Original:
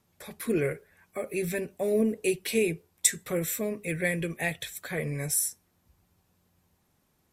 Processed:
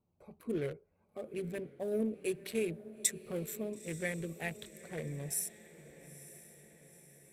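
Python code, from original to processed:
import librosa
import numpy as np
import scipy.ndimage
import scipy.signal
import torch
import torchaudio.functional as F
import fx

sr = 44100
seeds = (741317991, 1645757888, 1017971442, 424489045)

y = fx.wiener(x, sr, points=25)
y = fx.echo_diffused(y, sr, ms=924, feedback_pct=54, wet_db=-15.5)
y = y * librosa.db_to_amplitude(-8.0)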